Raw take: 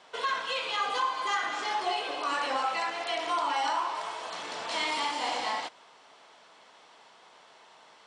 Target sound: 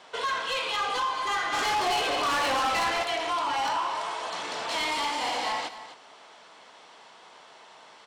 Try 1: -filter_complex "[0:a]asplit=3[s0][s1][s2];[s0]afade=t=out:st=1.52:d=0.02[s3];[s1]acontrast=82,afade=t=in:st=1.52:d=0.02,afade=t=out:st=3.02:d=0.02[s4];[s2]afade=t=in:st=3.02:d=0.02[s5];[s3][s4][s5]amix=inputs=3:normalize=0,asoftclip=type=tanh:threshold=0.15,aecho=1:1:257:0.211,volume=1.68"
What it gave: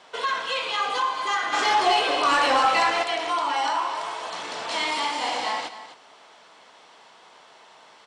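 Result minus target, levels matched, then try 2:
saturation: distortion -12 dB
-filter_complex "[0:a]asplit=3[s0][s1][s2];[s0]afade=t=out:st=1.52:d=0.02[s3];[s1]acontrast=82,afade=t=in:st=1.52:d=0.02,afade=t=out:st=3.02:d=0.02[s4];[s2]afade=t=in:st=3.02:d=0.02[s5];[s3][s4][s5]amix=inputs=3:normalize=0,asoftclip=type=tanh:threshold=0.0398,aecho=1:1:257:0.211,volume=1.68"

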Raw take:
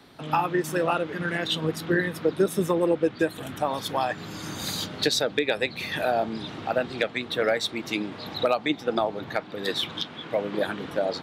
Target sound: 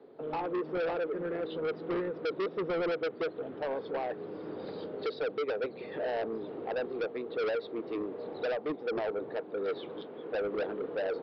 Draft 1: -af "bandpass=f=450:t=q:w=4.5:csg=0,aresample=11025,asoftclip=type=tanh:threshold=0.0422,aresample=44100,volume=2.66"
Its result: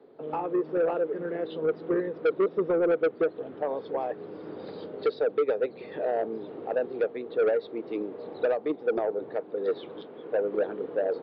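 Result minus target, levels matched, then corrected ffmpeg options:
saturation: distortion -7 dB
-af "bandpass=f=450:t=q:w=4.5:csg=0,aresample=11025,asoftclip=type=tanh:threshold=0.0133,aresample=44100,volume=2.66"

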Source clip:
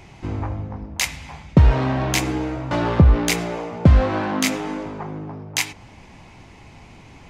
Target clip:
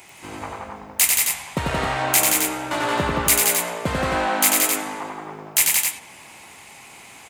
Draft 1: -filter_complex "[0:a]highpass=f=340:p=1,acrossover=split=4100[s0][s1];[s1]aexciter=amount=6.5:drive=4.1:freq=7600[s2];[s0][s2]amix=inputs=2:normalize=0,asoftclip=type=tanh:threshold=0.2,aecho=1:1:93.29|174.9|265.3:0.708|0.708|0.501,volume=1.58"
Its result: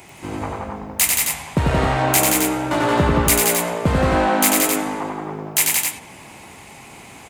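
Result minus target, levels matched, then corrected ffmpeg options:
250 Hz band +7.0 dB
-filter_complex "[0:a]highpass=f=1200:p=1,acrossover=split=4100[s0][s1];[s1]aexciter=amount=6.5:drive=4.1:freq=7600[s2];[s0][s2]amix=inputs=2:normalize=0,asoftclip=type=tanh:threshold=0.2,aecho=1:1:93.29|174.9|265.3:0.708|0.708|0.501,volume=1.58"

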